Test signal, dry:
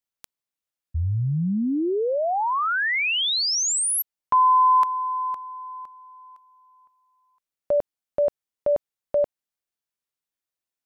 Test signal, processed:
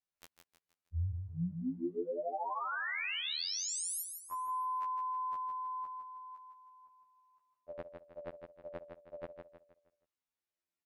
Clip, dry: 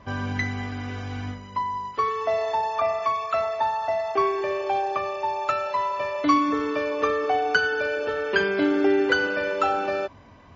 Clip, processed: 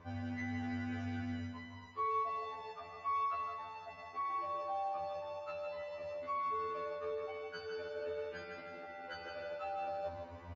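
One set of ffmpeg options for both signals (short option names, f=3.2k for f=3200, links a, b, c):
-af "aemphasis=mode=reproduction:type=cd,bandreject=f=3.2k:w=23,areverse,acompressor=threshold=-33dB:ratio=20:attack=2.9:release=249:knee=6:detection=peak,areverse,aecho=1:1:158|316|474|632|790:0.473|0.189|0.0757|0.0303|0.0121,afftfilt=real='re*2*eq(mod(b,4),0)':imag='im*2*eq(mod(b,4),0)':win_size=2048:overlap=0.75,volume=-1dB"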